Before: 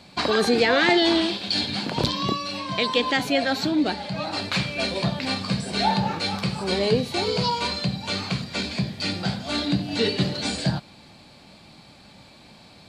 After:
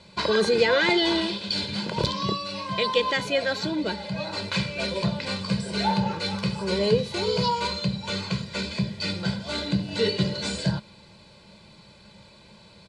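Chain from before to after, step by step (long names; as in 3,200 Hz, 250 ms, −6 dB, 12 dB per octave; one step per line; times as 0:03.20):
low-pass filter 10,000 Hz 24 dB per octave
parametric band 210 Hz +12 dB 0.42 octaves
comb filter 2 ms, depth 82%
level −4.5 dB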